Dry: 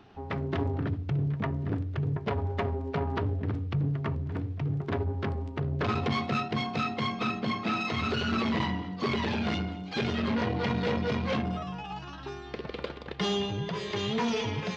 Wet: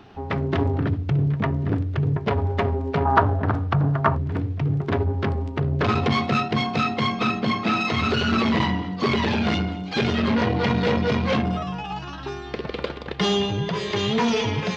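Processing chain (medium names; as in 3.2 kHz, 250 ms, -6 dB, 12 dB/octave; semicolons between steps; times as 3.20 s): 3.05–4.18 s: high-order bell 1 kHz +12 dB; trim +7.5 dB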